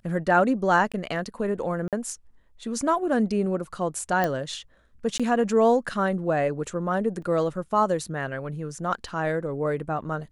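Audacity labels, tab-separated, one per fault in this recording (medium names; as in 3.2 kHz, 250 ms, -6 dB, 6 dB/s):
0.920000	0.940000	dropout 16 ms
1.880000	1.930000	dropout 47 ms
4.240000	4.240000	pop -12 dBFS
5.180000	5.200000	dropout 16 ms
7.220000	7.220000	dropout 3.3 ms
9.080000	9.080000	dropout 2.8 ms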